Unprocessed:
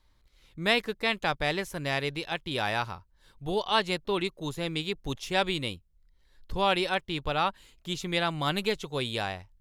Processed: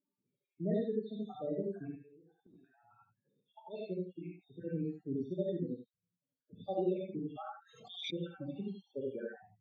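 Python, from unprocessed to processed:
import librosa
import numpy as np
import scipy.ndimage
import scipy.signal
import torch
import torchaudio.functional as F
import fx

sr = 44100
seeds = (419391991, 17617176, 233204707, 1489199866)

y = fx.spec_dropout(x, sr, seeds[0], share_pct=75)
y = scipy.signal.sosfilt(scipy.signal.butter(4, 150.0, 'highpass', fs=sr, output='sos'), y)
y = fx.level_steps(y, sr, step_db=10, at=(3.9, 4.6), fade=0.02)
y = fx.spec_topn(y, sr, count=8)
y = np.convolve(y, np.full(44, 1.0 / 44))[:len(y)]
y = fx.gate_flip(y, sr, shuts_db=-48.0, range_db=-24, at=(1.86, 2.9), fade=0.02)
y = y + 10.0 ** (-10.0 / 20.0) * np.pad(y, (int(74 * sr / 1000.0), 0))[:len(y)]
y = fx.rev_gated(y, sr, seeds[1], gate_ms=110, shape='rising', drr_db=-3.5)
y = fx.pre_swell(y, sr, db_per_s=64.0, at=(7.13, 8.1), fade=0.02)
y = y * librosa.db_to_amplitude(-2.5)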